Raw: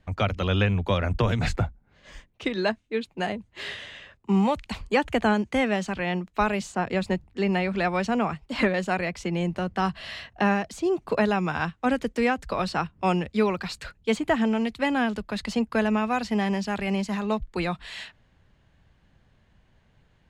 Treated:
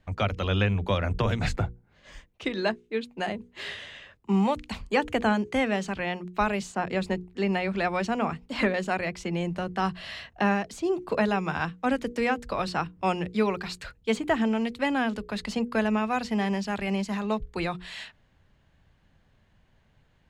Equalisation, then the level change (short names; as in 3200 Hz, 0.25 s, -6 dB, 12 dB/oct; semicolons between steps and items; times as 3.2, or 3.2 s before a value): notches 60/120/180/240/300/360/420/480 Hz; -1.5 dB